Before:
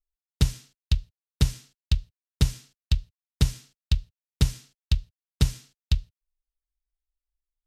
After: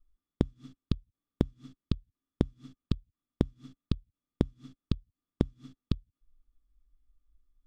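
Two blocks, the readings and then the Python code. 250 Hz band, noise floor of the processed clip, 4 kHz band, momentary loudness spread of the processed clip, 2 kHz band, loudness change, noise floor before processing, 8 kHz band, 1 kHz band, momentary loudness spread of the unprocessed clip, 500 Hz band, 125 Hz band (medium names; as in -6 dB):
+3.0 dB, under -85 dBFS, -15.0 dB, 15 LU, -12.5 dB, -7.0 dB, under -85 dBFS, under -20 dB, -2.5 dB, 13 LU, +5.0 dB, -8.5 dB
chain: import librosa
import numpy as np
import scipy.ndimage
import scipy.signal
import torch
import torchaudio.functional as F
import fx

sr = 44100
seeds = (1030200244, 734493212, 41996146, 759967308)

y = fx.riaa(x, sr, side='playback')
y = fx.small_body(y, sr, hz=(270.0, 1200.0, 3400.0), ring_ms=45, db=17)
y = fx.gate_flip(y, sr, shuts_db=-13.0, range_db=-38)
y = y * 10.0 ** (1.5 / 20.0)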